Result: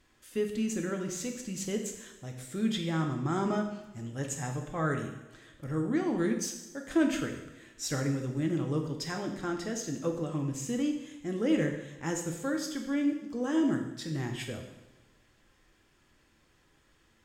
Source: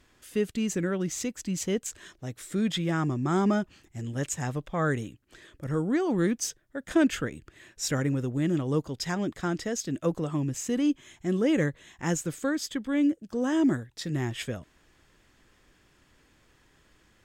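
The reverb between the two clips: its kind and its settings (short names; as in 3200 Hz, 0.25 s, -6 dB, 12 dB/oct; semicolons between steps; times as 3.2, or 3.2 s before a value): two-slope reverb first 0.88 s, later 2.2 s, DRR 2.5 dB; gain -5.5 dB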